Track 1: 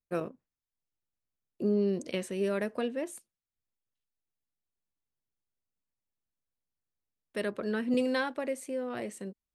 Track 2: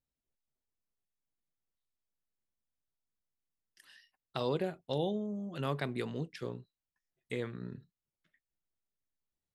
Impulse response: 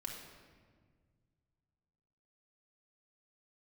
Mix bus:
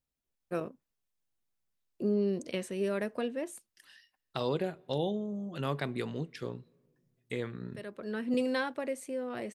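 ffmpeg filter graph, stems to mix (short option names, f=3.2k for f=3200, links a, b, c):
-filter_complex "[0:a]adelay=400,volume=-1.5dB[a];[1:a]volume=1dB,asplit=3[b][c][d];[c]volume=-22dB[e];[d]apad=whole_len=438363[f];[a][f]sidechaincompress=threshold=-47dB:ratio=8:attack=32:release=715[g];[2:a]atrim=start_sample=2205[h];[e][h]afir=irnorm=-1:irlink=0[i];[g][b][i]amix=inputs=3:normalize=0"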